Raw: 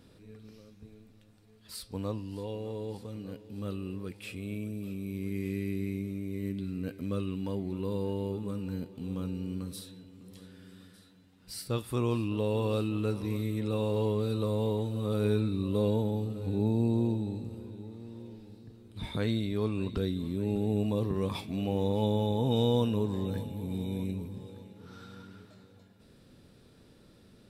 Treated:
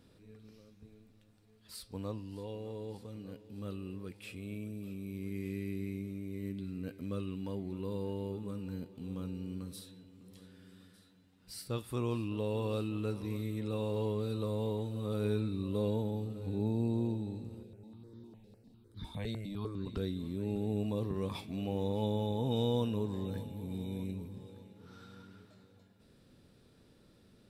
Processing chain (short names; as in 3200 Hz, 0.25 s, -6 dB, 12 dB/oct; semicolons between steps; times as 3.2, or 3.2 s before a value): 17.63–19.87 step phaser 9.9 Hz 280–2600 Hz; gain -5 dB